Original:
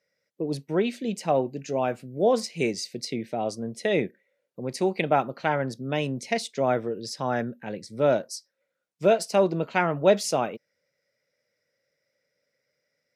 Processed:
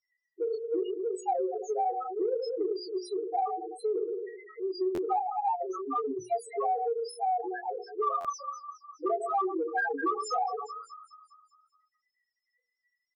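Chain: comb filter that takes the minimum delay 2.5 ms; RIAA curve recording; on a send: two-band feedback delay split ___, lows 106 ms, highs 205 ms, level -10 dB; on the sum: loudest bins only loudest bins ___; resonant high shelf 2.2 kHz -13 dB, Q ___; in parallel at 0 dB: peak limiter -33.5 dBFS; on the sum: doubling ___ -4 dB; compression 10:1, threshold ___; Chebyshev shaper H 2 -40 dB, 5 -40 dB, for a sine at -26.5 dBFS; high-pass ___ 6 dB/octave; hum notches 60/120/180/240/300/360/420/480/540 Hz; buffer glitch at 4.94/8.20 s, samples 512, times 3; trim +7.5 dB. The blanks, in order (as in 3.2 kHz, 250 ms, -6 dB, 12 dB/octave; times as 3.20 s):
1.2 kHz, 1, 1.5, 19 ms, -33 dBFS, 46 Hz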